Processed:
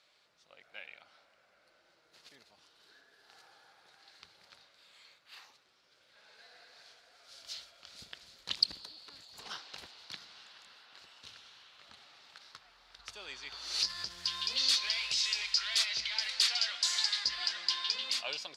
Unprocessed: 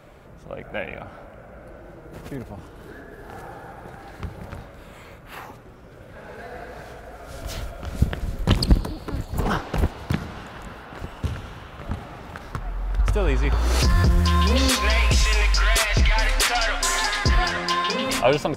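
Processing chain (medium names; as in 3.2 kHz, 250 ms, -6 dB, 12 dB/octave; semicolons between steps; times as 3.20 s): band-pass filter 4.4 kHz, Q 3.1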